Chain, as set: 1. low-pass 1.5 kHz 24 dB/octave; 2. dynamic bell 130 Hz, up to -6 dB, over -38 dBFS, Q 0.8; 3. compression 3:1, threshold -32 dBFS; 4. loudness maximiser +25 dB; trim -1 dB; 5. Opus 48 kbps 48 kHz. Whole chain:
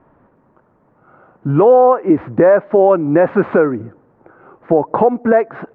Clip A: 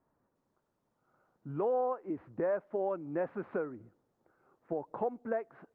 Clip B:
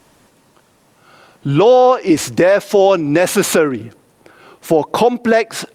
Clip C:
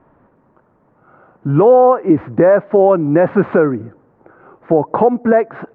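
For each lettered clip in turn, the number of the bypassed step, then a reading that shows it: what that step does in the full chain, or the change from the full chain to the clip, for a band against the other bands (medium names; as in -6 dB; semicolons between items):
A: 4, crest factor change +3.5 dB; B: 1, 2 kHz band +5.0 dB; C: 2, 125 Hz band +2.0 dB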